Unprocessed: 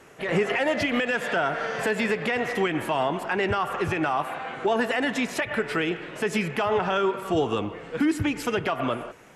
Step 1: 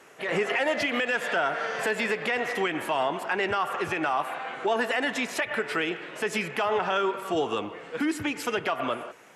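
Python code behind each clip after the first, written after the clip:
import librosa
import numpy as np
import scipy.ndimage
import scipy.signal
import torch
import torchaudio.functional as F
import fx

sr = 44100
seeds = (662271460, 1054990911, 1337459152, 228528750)

y = fx.highpass(x, sr, hz=420.0, slope=6)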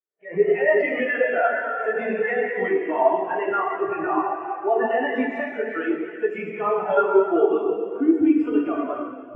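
y = fx.rev_plate(x, sr, seeds[0], rt60_s=4.5, hf_ratio=0.95, predelay_ms=0, drr_db=-5.5)
y = fx.spectral_expand(y, sr, expansion=2.5)
y = y * librosa.db_to_amplitude(2.5)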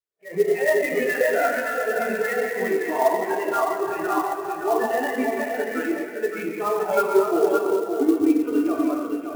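y = x + 10.0 ** (-5.5 / 20.0) * np.pad(x, (int(569 * sr / 1000.0), 0))[:len(x)]
y = fx.clock_jitter(y, sr, seeds[1], jitter_ms=0.02)
y = y * librosa.db_to_amplitude(-1.5)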